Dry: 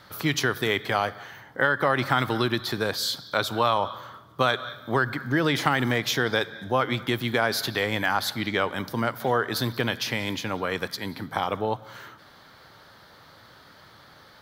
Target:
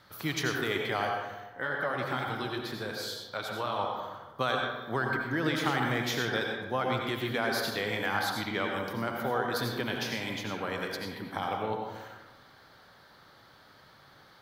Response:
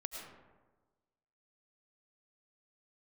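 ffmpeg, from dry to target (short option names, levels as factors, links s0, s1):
-filter_complex "[0:a]asettb=1/sr,asplit=3[s0][s1][s2];[s0]atrim=end=1.344[s3];[s1]atrim=start=1.34:end=3.78,asetpts=PTS-STARTPTS,afade=t=in:d=0.004:c=qsin,afade=t=out:st=2.436:d=0.004:c=qsin,flanger=delay=1.3:depth=9.9:regen=-43:speed=2:shape=sinusoidal[s4];[s2]atrim=start=3.776[s5];[s3][s4]acrossfade=d=0.004:c1=hsin:c2=qsin[s6];[s6][s5]acrossfade=d=0.004:c1=qsin:c2=hsin[s7];[1:a]atrim=start_sample=2205,asetrate=52920,aresample=44100[s8];[s7][s8]afir=irnorm=-1:irlink=0,volume=0.75"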